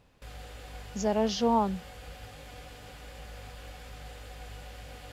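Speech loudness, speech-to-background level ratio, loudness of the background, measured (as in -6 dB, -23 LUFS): -29.0 LUFS, 17.5 dB, -46.5 LUFS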